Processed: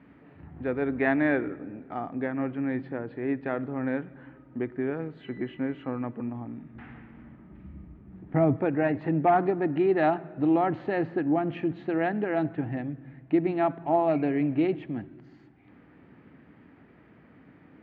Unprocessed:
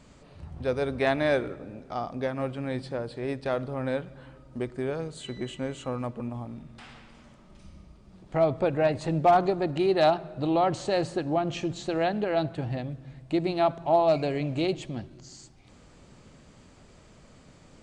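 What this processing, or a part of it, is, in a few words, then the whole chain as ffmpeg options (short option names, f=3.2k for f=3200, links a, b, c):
bass cabinet: -filter_complex "[0:a]highpass=f=74:w=0.5412,highpass=f=74:w=1.3066,equalizer=f=86:t=q:w=4:g=-8,equalizer=f=130:t=q:w=4:g=-3,equalizer=f=290:t=q:w=4:g=8,equalizer=f=570:t=q:w=4:g=-7,equalizer=f=1.1k:t=q:w=4:g=-4,equalizer=f=1.8k:t=q:w=4:g=5,lowpass=f=2.3k:w=0.5412,lowpass=f=2.3k:w=1.3066,asettb=1/sr,asplit=3[a][b][c];[a]atrim=end=6.754[d];[b]atrim=start=6.75:end=8.57,asetpts=PTS-STARTPTS,afade=t=in:d=0.004:c=qsin,afade=t=out:st=1.816:d=0.004:c=qsin,aemphasis=mode=reproduction:type=bsi[e];[c]atrim=start=8.566[f];[d][e]acrossfade=d=0.004:c1=hsin:c2=qsin[g];[g][f]acrossfade=d=0.004:c1=qsin:c2=hsin"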